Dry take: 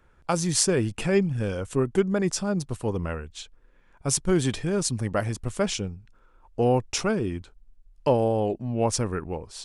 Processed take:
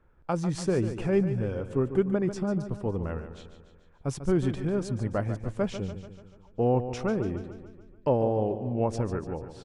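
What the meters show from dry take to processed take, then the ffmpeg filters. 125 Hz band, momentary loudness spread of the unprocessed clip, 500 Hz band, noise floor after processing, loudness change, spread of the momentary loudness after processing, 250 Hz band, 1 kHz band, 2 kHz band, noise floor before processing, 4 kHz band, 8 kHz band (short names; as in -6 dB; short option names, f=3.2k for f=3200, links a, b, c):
-1.5 dB, 11 LU, -2.5 dB, -57 dBFS, -3.0 dB, 12 LU, -2.0 dB, -4.0 dB, -7.5 dB, -59 dBFS, -14.0 dB, -18.5 dB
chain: -filter_complex "[0:a]lowpass=f=1k:p=1,asplit=2[a][b];[b]aecho=0:1:145|290|435|580|725|870:0.282|0.155|0.0853|0.0469|0.0258|0.0142[c];[a][c]amix=inputs=2:normalize=0,volume=-2dB"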